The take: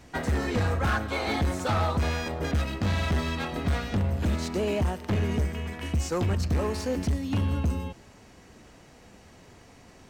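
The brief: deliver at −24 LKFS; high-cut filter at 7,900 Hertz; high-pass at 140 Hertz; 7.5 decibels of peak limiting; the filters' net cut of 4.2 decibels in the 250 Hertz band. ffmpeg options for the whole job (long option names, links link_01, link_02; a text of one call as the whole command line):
ffmpeg -i in.wav -af "highpass=140,lowpass=7900,equalizer=frequency=250:width_type=o:gain=-4.5,volume=10dB,alimiter=limit=-14dB:level=0:latency=1" out.wav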